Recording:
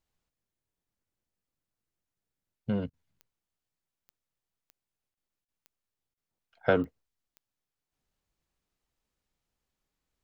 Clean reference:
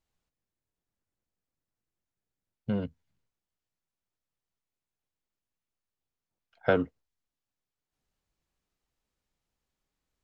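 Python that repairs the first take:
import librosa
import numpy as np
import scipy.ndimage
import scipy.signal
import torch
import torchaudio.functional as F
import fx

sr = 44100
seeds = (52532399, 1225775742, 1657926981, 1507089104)

y = fx.fix_declick_ar(x, sr, threshold=10.0)
y = fx.fix_interpolate(y, sr, at_s=(2.9, 5.14, 5.45, 6.14), length_ms=32.0)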